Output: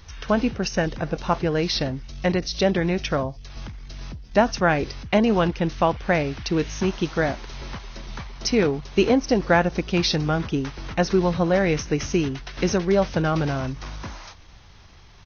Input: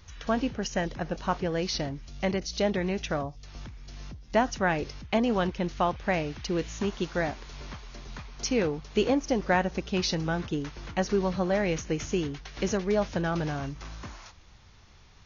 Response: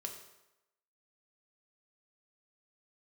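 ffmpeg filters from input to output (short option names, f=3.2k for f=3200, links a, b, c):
-af "asetrate=41625,aresample=44100,atempo=1.05946,volume=6.5dB"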